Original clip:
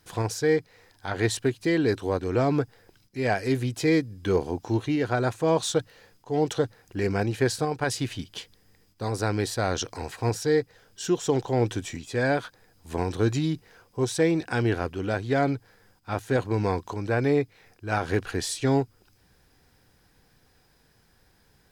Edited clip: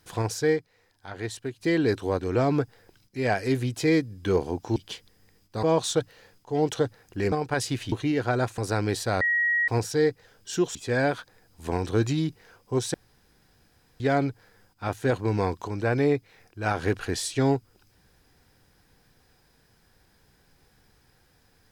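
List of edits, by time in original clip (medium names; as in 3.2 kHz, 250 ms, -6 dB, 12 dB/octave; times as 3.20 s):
0.49–1.68 s: dip -8.5 dB, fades 0.13 s
4.76–5.42 s: swap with 8.22–9.09 s
7.11–7.62 s: delete
9.72–10.19 s: bleep 1.9 kHz -20.5 dBFS
11.26–12.01 s: delete
14.20–15.26 s: room tone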